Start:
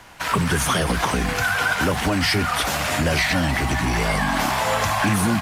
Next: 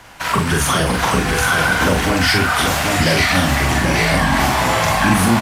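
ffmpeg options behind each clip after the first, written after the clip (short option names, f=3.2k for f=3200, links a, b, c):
-filter_complex "[0:a]asplit=2[a][b];[b]adelay=43,volume=-3dB[c];[a][c]amix=inputs=2:normalize=0,aecho=1:1:785:0.596,volume=2.5dB"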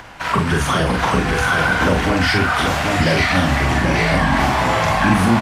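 -af "aemphasis=mode=reproduction:type=50kf,acompressor=mode=upward:threshold=-33dB:ratio=2.5"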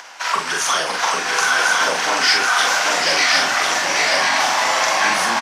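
-af "highpass=670,equalizer=f=5.8k:w=1.5:g=11.5,aecho=1:1:1050:0.596"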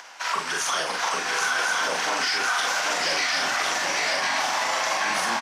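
-af "alimiter=limit=-9.5dB:level=0:latency=1:release=36,volume=-5.5dB"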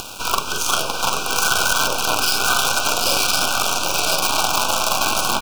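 -af "acrusher=bits=4:dc=4:mix=0:aa=0.000001,asuperstop=centerf=1900:order=20:qfactor=2.4,acompressor=mode=upward:threshold=-33dB:ratio=2.5,volume=8dB"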